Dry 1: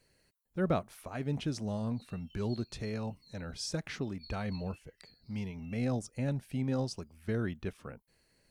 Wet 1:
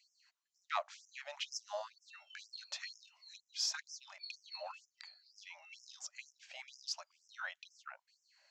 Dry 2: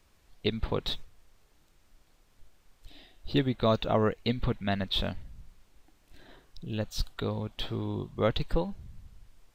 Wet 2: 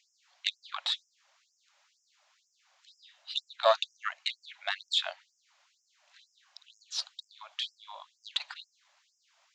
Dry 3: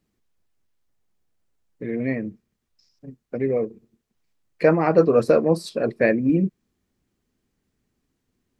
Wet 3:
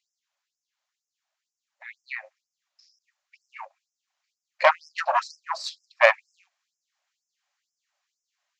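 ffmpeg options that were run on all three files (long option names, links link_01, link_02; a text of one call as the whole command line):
ffmpeg -i in.wav -af "aresample=16000,aresample=44100,aeval=exprs='0.668*(cos(1*acos(clip(val(0)/0.668,-1,1)))-cos(1*PI/2))+0.15*(cos(4*acos(clip(val(0)/0.668,-1,1)))-cos(4*PI/2))':channel_layout=same,afftfilt=real='re*gte(b*sr/1024,520*pow(5100/520,0.5+0.5*sin(2*PI*2.1*pts/sr)))':imag='im*gte(b*sr/1024,520*pow(5100/520,0.5+0.5*sin(2*PI*2.1*pts/sr)))':win_size=1024:overlap=0.75,volume=4dB" out.wav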